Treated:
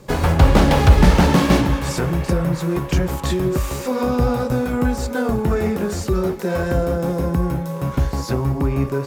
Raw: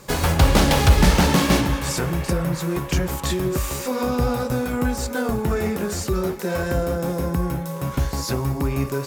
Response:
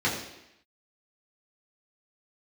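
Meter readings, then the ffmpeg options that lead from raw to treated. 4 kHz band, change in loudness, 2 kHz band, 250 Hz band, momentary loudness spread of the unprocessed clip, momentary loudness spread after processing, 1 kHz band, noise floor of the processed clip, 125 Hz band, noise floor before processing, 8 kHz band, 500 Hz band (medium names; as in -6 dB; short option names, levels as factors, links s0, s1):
-2.5 dB, +2.5 dB, +0.5 dB, +3.5 dB, 9 LU, 8 LU, +2.0 dB, -30 dBFS, +3.5 dB, -31 dBFS, -4.0 dB, +3.0 dB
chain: -filter_complex "[0:a]highshelf=f=3000:g=-12,acrossover=split=740|3000[s0][s1][s2];[s1]aeval=exprs='sgn(val(0))*max(abs(val(0))-0.00112,0)':c=same[s3];[s2]dynaudnorm=f=230:g=11:m=1.58[s4];[s0][s3][s4]amix=inputs=3:normalize=0,volume=1.5"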